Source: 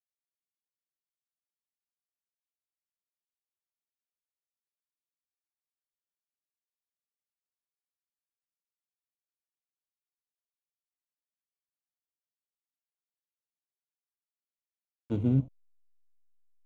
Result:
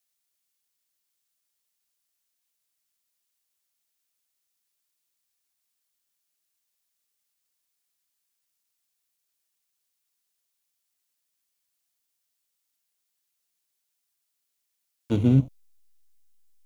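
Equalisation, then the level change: high shelf 2400 Hz +12 dB; +6.5 dB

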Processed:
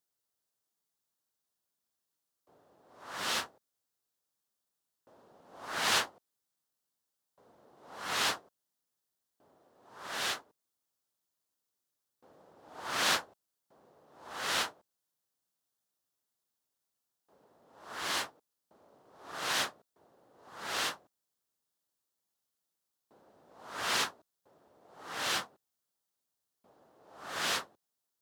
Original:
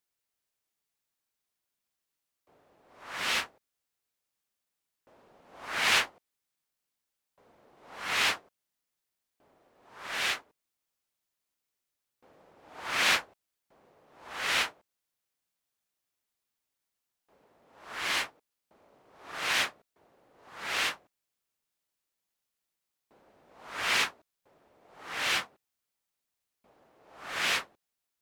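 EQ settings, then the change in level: HPF 79 Hz; bell 2300 Hz -10 dB 0.75 oct; 0.0 dB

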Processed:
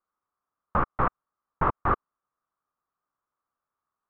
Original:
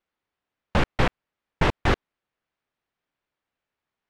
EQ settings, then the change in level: synth low-pass 1200 Hz, resonance Q 6.4; air absorption 99 m; -7.0 dB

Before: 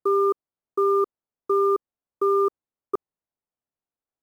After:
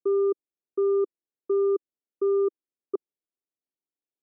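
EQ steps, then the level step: band-pass 350 Hz, Q 2.1; air absorption 82 m; 0.0 dB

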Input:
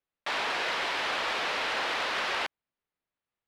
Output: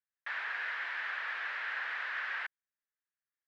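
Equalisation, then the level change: band-pass 1700 Hz, Q 4.2; 0.0 dB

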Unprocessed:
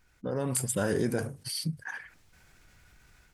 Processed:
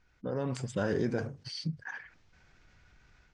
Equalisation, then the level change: steep low-pass 6600 Hz 36 dB/oct; high shelf 4700 Hz -5.5 dB; -2.0 dB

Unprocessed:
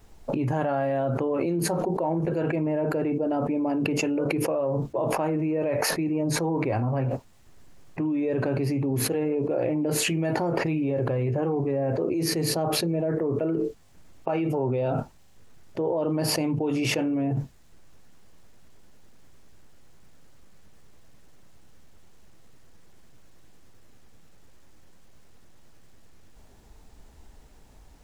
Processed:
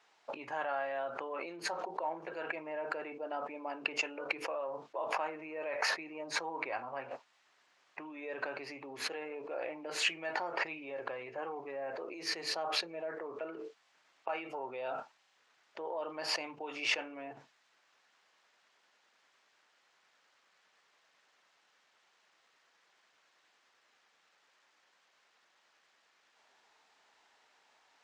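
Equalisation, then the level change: HPF 1100 Hz 12 dB/oct; air absorption 140 m; 0.0 dB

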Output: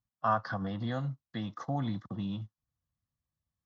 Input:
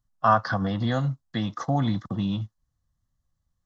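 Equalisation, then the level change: HPF 73 Hz; air absorption 72 m; -8.5 dB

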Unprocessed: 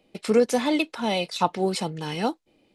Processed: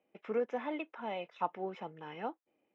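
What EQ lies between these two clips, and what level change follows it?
running mean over 10 samples; HPF 820 Hz 6 dB/oct; air absorption 260 m; -6.5 dB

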